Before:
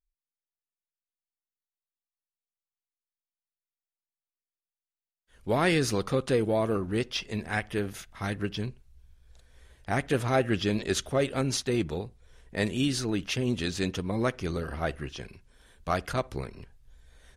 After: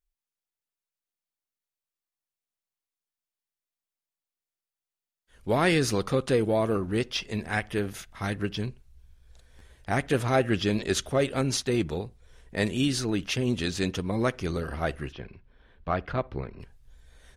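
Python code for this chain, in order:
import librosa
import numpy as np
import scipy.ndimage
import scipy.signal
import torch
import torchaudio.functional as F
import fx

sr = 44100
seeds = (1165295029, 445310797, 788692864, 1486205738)

y = fx.air_absorb(x, sr, metres=330.0, at=(15.11, 16.59), fade=0.02)
y = fx.buffer_glitch(y, sr, at_s=(9.58,), block=512, repeats=2)
y = y * librosa.db_to_amplitude(1.5)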